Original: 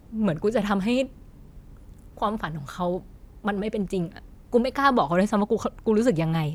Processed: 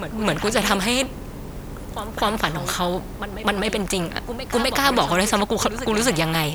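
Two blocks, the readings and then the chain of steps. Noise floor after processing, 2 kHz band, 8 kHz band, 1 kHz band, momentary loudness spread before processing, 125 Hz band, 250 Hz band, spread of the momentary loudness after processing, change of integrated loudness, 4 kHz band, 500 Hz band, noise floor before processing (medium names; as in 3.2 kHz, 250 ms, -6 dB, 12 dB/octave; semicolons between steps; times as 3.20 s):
-35 dBFS, +9.0 dB, +18.5 dB, +4.0 dB, 10 LU, +1.5 dB, +0.5 dB, 13 LU, +3.5 dB, +14.5 dB, +1.5 dB, -50 dBFS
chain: pre-echo 255 ms -18.5 dB; spectrum-flattening compressor 2:1; trim +4.5 dB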